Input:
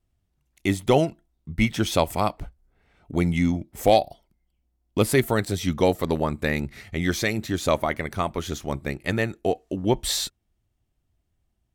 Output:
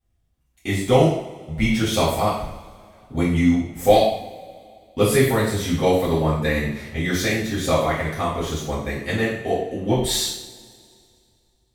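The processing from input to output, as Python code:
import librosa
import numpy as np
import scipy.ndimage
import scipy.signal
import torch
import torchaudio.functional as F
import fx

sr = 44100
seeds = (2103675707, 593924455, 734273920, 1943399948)

y = fx.rev_double_slope(x, sr, seeds[0], early_s=0.6, late_s=2.4, knee_db=-20, drr_db=-9.5)
y = F.gain(torch.from_numpy(y), -7.0).numpy()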